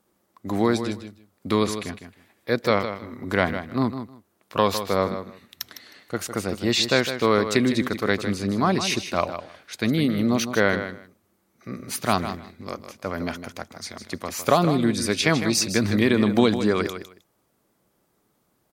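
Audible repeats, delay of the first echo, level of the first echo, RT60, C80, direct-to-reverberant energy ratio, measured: 2, 0.156 s, -10.0 dB, none, none, none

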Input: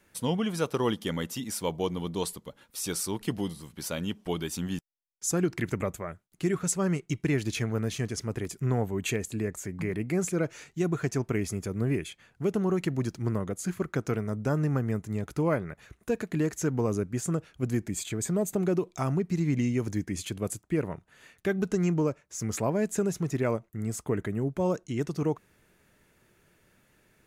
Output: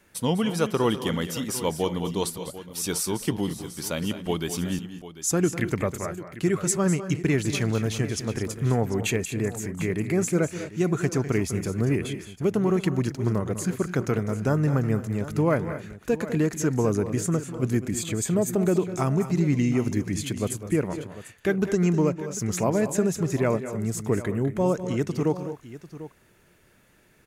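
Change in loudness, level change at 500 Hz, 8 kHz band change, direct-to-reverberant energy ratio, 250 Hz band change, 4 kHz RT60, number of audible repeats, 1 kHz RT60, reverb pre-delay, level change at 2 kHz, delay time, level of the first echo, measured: +4.5 dB, +4.5 dB, +4.5 dB, none, +4.5 dB, none, 2, none, none, +4.5 dB, 0.201 s, -12.5 dB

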